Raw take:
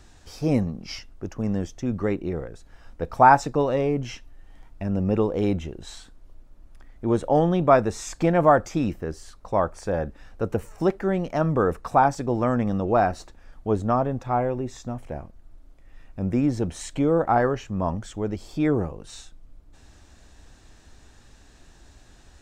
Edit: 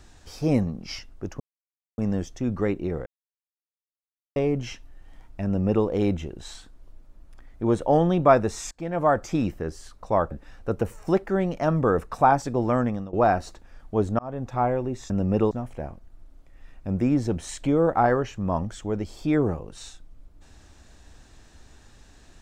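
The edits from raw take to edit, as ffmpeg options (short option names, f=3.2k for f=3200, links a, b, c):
-filter_complex "[0:a]asplit=10[a][b][c][d][e][f][g][h][i][j];[a]atrim=end=1.4,asetpts=PTS-STARTPTS,afade=t=out:st=1.396:d=0.004:c=hsin,apad=pad_dur=0.58[k];[b]atrim=start=1.4:end=2.48,asetpts=PTS-STARTPTS,afade=t=in:d=0.004:c=hsin,afade=t=out:st=1.076:d=0.004:c=hsin[l];[c]atrim=start=2.48:end=3.78,asetpts=PTS-STARTPTS,volume=0[m];[d]atrim=start=3.78:end=8.13,asetpts=PTS-STARTPTS,afade=t=in:d=0.004:c=hsin,afade=t=out:st=4.346:d=0.004:c=hsin:silence=0.0668344[n];[e]atrim=start=8.13:end=9.732,asetpts=PTS-STARTPTS,afade=t=in:d=0.62:silence=0.0668344[o];[f]atrim=start=10.038:end=12.86,asetpts=PTS-STARTPTS,afade=t=out:st=2.502:d=0.32:silence=0.0944061[p];[g]atrim=start=12.86:end=13.92,asetpts=PTS-STARTPTS,afade=t=in:d=0.004:c=hsin:silence=0.0944061,afade=t=out:st=1.056:d=0.004:c=hsin[q];[h]atrim=start=13.92:end=14.832,asetpts=PTS-STARTPTS,afade=t=in:d=0.32[r];[i]atrim=start=4.868:end=5.282[s];[j]atrim=start=14.828[t];[k][l][m][n][o]concat=n=5:v=0:a=1[u];[p][q][r]concat=n=3:v=0:a=1[v];[u][v]acrossfade=d=0.004:c1=hsin:c2=hsin[w];[w][s]acrossfade=d=0.004:c1=hsin:c2=hsin[x];[x][t]acrossfade=d=0.004:c1=hsin:c2=hsin"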